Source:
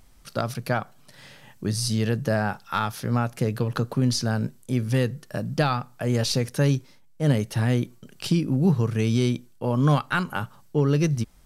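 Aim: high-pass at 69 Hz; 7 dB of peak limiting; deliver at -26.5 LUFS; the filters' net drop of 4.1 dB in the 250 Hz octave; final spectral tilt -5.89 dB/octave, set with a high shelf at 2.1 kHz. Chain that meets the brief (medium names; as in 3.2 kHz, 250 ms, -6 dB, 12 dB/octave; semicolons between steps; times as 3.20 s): high-pass 69 Hz; peaking EQ 250 Hz -5.5 dB; treble shelf 2.1 kHz -3.5 dB; trim +3 dB; peak limiter -15 dBFS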